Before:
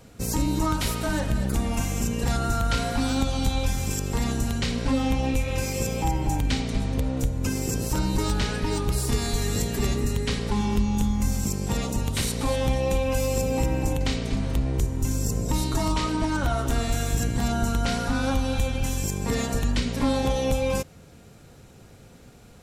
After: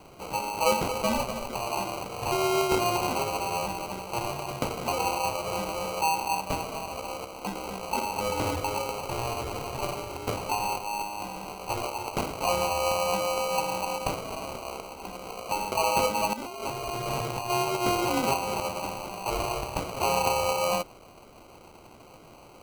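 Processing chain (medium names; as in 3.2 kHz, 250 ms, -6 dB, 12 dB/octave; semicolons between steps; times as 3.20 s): treble shelf 3.3 kHz -6.5 dB; added noise blue -45 dBFS; high-pass 670 Hz 24 dB/octave; distance through air 210 m; sample-and-hold 25×; 16.33–17.50 s: compressor with a negative ratio -42 dBFS, ratio -1; trim +8.5 dB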